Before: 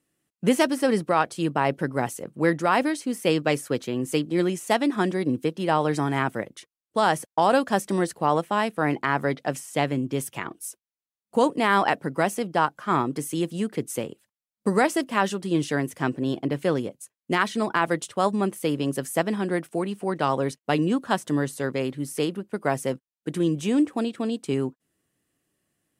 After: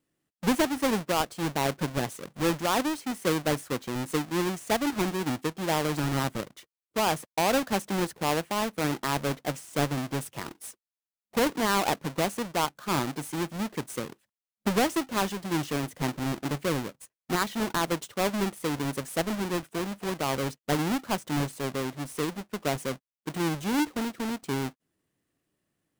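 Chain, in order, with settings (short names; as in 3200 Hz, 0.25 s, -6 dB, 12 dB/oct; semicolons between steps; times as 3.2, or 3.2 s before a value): half-waves squared off; gain -8.5 dB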